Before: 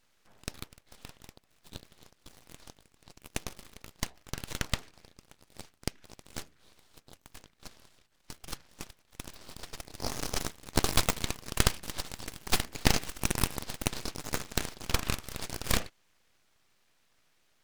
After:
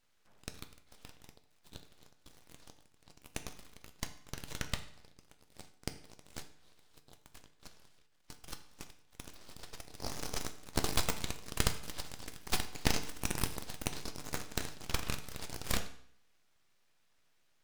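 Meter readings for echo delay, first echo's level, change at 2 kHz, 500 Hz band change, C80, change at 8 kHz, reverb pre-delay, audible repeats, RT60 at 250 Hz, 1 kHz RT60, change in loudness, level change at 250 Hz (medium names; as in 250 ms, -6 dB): no echo, no echo, -5.5 dB, -5.5 dB, 15.5 dB, -5.5 dB, 7 ms, no echo, 0.60 s, 0.60 s, -5.5 dB, -5.5 dB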